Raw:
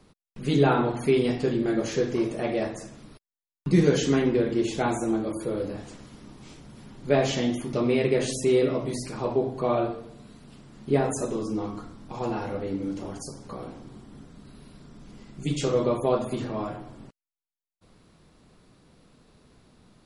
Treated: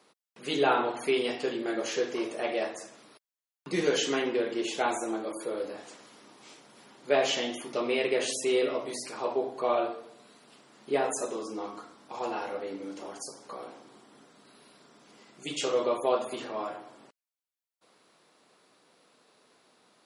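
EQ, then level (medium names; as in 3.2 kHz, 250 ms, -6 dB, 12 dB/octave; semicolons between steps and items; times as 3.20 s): high-pass 480 Hz 12 dB/octave; dynamic bell 2.9 kHz, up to +5 dB, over -53 dBFS, Q 4.7; 0.0 dB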